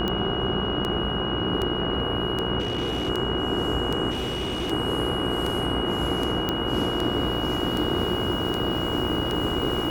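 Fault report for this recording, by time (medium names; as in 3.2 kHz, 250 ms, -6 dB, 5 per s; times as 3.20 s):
buzz 60 Hz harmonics 27 -31 dBFS
tick 78 rpm -14 dBFS
whine 2.9 kHz -30 dBFS
2.59–3.10 s: clipped -22.5 dBFS
4.10–4.72 s: clipped -24.5 dBFS
6.49 s: pop -11 dBFS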